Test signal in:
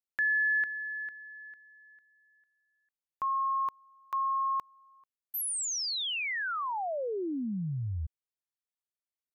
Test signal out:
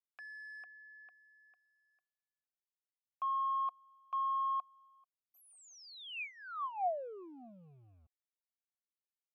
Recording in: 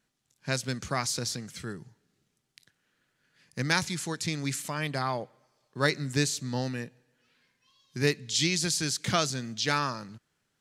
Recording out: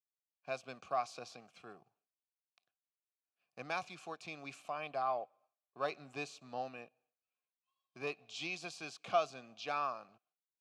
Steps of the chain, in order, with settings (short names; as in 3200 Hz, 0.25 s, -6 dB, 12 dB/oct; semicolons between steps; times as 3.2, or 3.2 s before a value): expander -59 dBFS; sample leveller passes 1; vowel filter a